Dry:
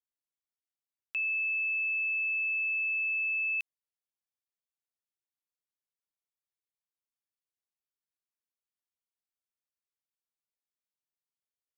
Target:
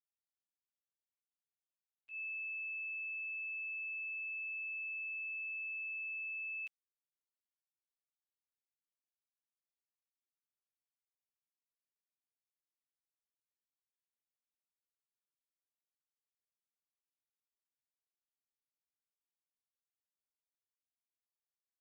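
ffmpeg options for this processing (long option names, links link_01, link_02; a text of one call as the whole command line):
ffmpeg -i in.wav -af "agate=range=-33dB:threshold=-20dB:ratio=3:detection=peak,atempo=0.54,volume=6dB" out.wav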